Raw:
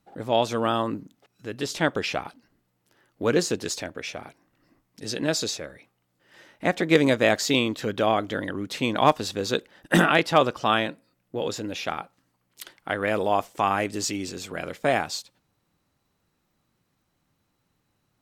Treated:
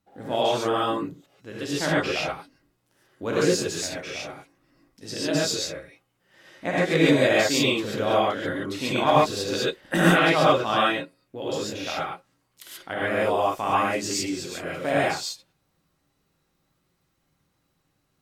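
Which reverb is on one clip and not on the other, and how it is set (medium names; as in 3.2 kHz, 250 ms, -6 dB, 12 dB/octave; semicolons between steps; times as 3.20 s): gated-style reverb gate 160 ms rising, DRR -7 dB; trim -6.5 dB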